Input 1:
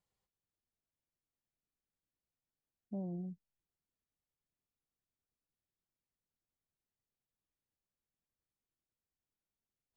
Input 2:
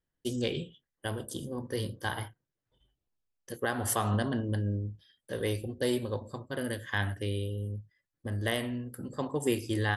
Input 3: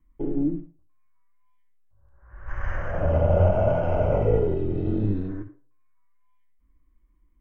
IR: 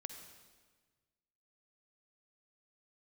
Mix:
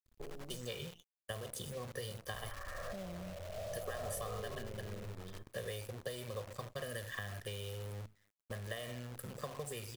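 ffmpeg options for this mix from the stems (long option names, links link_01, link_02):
-filter_complex "[0:a]volume=-2dB,asplit=2[link_01][link_02];[1:a]acompressor=threshold=-34dB:ratio=8,adelay=250,volume=-2.5dB,asplit=2[link_03][link_04];[link_04]volume=-23.5dB[link_05];[2:a]alimiter=limit=-19dB:level=0:latency=1:release=59,volume=-13dB[link_06];[link_02]apad=whole_len=326680[link_07];[link_06][link_07]sidechaincompress=threshold=-53dB:ratio=8:attack=16:release=1000[link_08];[3:a]atrim=start_sample=2205[link_09];[link_05][link_09]afir=irnorm=-1:irlink=0[link_10];[link_01][link_03][link_08][link_10]amix=inputs=4:normalize=0,aecho=1:1:1.7:0.92,acrossover=split=180|520[link_11][link_12][link_13];[link_11]acompressor=threshold=-48dB:ratio=4[link_14];[link_12]acompressor=threshold=-51dB:ratio=4[link_15];[link_13]acompressor=threshold=-41dB:ratio=4[link_16];[link_14][link_15][link_16]amix=inputs=3:normalize=0,acrusher=bits=9:dc=4:mix=0:aa=0.000001"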